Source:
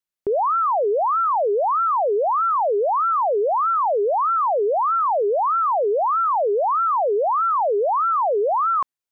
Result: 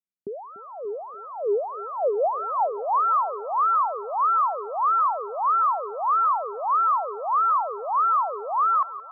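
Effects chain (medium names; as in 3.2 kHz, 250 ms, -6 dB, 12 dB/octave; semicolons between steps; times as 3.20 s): band-pass sweep 210 Hz -> 1.2 kHz, 0.80–3.13 s; two-band feedback delay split 720 Hz, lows 291 ms, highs 172 ms, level -16 dB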